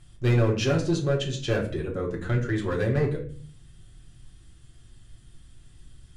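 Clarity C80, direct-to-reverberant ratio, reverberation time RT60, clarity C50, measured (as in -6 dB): 13.5 dB, -3.5 dB, 0.45 s, 9.0 dB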